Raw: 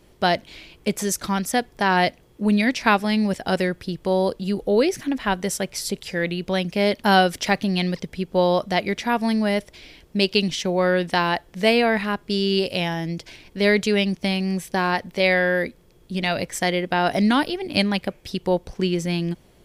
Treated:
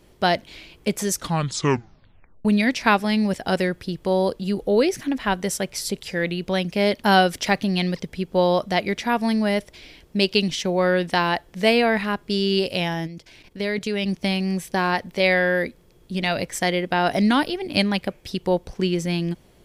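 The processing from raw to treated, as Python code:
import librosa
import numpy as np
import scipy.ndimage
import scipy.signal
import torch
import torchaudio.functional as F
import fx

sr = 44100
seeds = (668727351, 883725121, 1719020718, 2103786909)

y = fx.level_steps(x, sr, step_db=12, at=(13.06, 14.07), fade=0.02)
y = fx.edit(y, sr, fx.tape_stop(start_s=1.12, length_s=1.33), tone=tone)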